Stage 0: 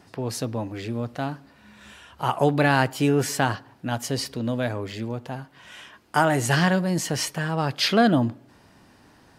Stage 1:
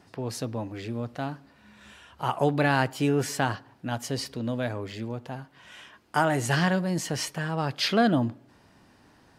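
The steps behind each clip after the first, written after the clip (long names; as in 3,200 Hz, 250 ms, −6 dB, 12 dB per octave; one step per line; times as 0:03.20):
high-shelf EQ 10,000 Hz −4 dB
level −3.5 dB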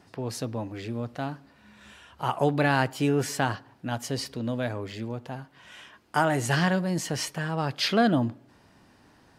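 no processing that can be heard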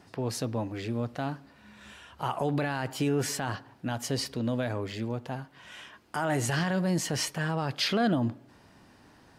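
brickwall limiter −19.5 dBFS, peak gain reduction 11 dB
level +1 dB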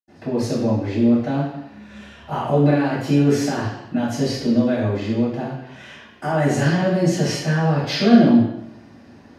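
convolution reverb RT60 0.85 s, pre-delay 77 ms
level −2 dB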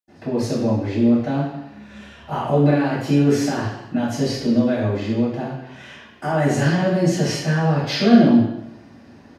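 repeating echo 137 ms, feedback 45%, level −23 dB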